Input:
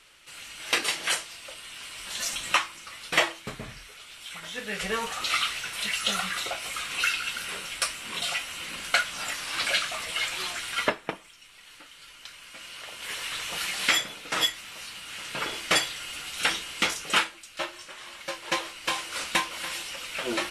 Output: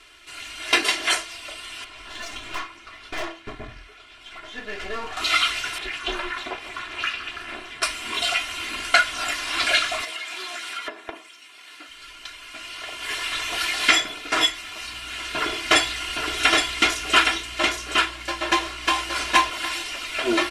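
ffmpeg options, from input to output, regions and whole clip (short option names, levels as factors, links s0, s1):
-filter_complex "[0:a]asettb=1/sr,asplit=3[s0][s1][s2];[s0]atrim=end=1.844[s3];[s1]atrim=start=1.84:end=5.17,asetpts=PTS-STARTPTS,afade=t=in:d=0.004:c=qsin,afade=t=out:st=3.326:d=0.004:c=qsin,lowpass=f=2000:p=1,aeval=exprs='(tanh(50.1*val(0)+0.6)-tanh(0.6))/50.1':c=same[s4];[s2]atrim=start=5.166[s5];[s3][s4]acrossfade=d=0.004:c1=hsin:c2=qsin[s6];[s6][s5]acrossfade=d=0.004:c1=qsin:c2=hsin,asettb=1/sr,asplit=3[s7][s8][s9];[s7]atrim=end=5.784[s10];[s8]atrim=start=5.78:end=7.83,asetpts=PTS-STARTPTS,afade=t=in:d=0.004:c=qsin,afade=t=out:st=2.046:d=0.004:c=qsin,lowpass=f=1800:p=1,aeval=exprs='val(0)*sin(2*PI*170*n/s)':c=same[s11];[s9]atrim=start=7.826[s12];[s10][s11]acrossfade=d=0.004:c1=hsin:c2=qsin[s13];[s13][s12]acrossfade=d=0.004:c1=qsin:c2=hsin,asettb=1/sr,asplit=3[s14][s15][s16];[s14]atrim=end=10.044[s17];[s15]atrim=start=10.04:end=11.88,asetpts=PTS-STARTPTS,afade=t=in:d=0.004:c=qsin,afade=t=out:st=1.836:d=0.004:c=qsin,highpass=230,acompressor=threshold=0.0178:ratio=10:attack=3.2:release=140:knee=1:detection=peak[s18];[s16]atrim=start=11.876[s19];[s17][s18]acrossfade=d=0.004:c1=hsin:c2=qsin[s20];[s20][s19]acrossfade=d=0.004:c1=qsin:c2=hsin,asettb=1/sr,asplit=3[s21][s22][s23];[s21]atrim=end=14.844[s24];[s22]atrim=start=14.84:end=19.5,asetpts=PTS-STARTPTS,afade=t=in:d=0.004:c=qsin,afade=t=out:st=4.656:d=0.004:c=qsin,aeval=exprs='val(0)+0.00158*(sin(2*PI*60*n/s)+sin(2*PI*2*60*n/s)/2+sin(2*PI*3*60*n/s)/3+sin(2*PI*4*60*n/s)/4+sin(2*PI*5*60*n/s)/5)':c=same,aecho=1:1:817:0.668,atrim=end_sample=205506[s25];[s23]atrim=start=19.496[s26];[s24][s25]acrossfade=d=0.004:c1=hsin:c2=qsin[s27];[s27][s26]acrossfade=d=0.004:c1=qsin:c2=hsin,acontrast=35,highshelf=f=7900:g=-10.5,aecho=1:1:2.9:0.97,volume=0.891"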